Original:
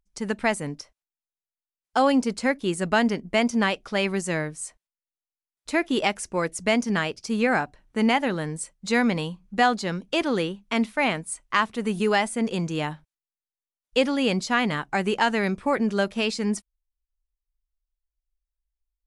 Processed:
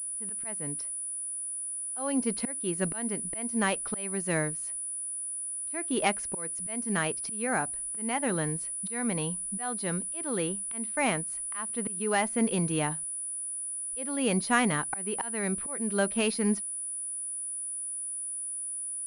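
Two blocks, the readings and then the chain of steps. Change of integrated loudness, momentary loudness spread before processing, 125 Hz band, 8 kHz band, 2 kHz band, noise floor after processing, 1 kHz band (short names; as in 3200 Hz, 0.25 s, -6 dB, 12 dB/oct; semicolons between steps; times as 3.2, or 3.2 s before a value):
-5.5 dB, 8 LU, -3.5 dB, +10.0 dB, -8.0 dB, -36 dBFS, -8.0 dB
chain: dynamic EQ 3100 Hz, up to -3 dB, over -37 dBFS, Q 1.6; auto swell 0.423 s; pulse-width modulation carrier 9800 Hz; gain -1.5 dB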